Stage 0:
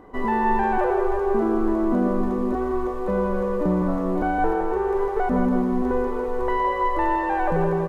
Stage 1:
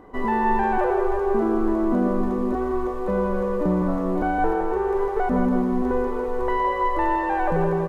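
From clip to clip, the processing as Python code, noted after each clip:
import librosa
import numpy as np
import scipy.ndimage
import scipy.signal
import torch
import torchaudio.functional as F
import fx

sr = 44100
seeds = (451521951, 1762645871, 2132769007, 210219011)

y = x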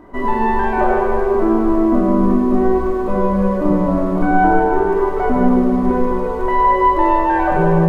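y = fx.room_shoebox(x, sr, seeds[0], volume_m3=1900.0, walls='mixed', distance_m=2.8)
y = y * 10.0 ** (2.0 / 20.0)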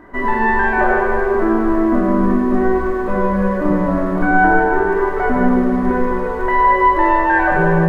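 y = fx.peak_eq(x, sr, hz=1700.0, db=12.0, octaves=0.6)
y = y * 10.0 ** (-1.0 / 20.0)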